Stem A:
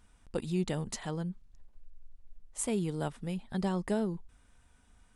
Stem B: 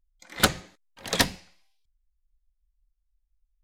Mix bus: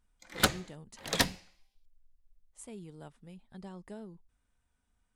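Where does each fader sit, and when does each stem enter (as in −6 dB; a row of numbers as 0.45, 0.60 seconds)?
−14.5, −5.0 decibels; 0.00, 0.00 seconds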